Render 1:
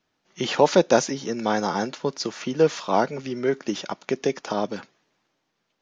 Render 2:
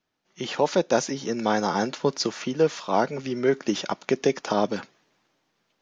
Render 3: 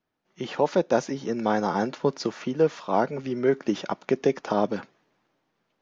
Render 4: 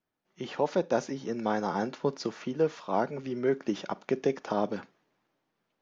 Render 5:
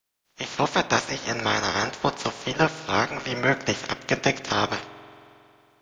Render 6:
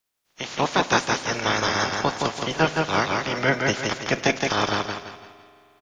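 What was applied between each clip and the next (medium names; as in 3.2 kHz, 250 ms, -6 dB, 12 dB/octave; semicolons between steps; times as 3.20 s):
gain riding within 4 dB 0.5 s; trim -1 dB
treble shelf 3 kHz -11.5 dB
reverberation RT60 0.20 s, pre-delay 32 ms, DRR 20.5 dB; trim -5 dB
spectral peaks clipped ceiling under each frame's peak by 27 dB; spring tank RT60 2.8 s, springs 45 ms, chirp 35 ms, DRR 16 dB; trim +5.5 dB
feedback delay 168 ms, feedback 36%, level -3.5 dB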